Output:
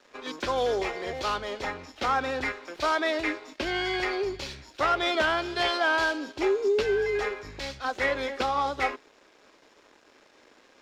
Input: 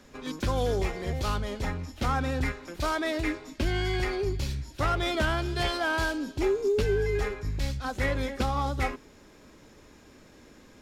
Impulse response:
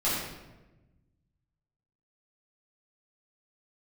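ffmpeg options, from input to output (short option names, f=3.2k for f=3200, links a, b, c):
-filter_complex "[0:a]aeval=exprs='sgn(val(0))*max(abs(val(0))-0.0015,0)':c=same,acrossover=split=330 6200:gain=0.1 1 0.178[a][b][c];[a][b][c]amix=inputs=3:normalize=0,volume=4.5dB"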